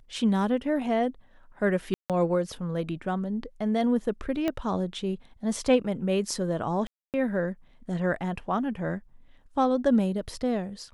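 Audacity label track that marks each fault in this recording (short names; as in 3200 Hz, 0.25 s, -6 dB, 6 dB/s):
1.940000	2.100000	gap 0.157 s
4.480000	4.480000	pop -15 dBFS
6.870000	7.140000	gap 0.268 s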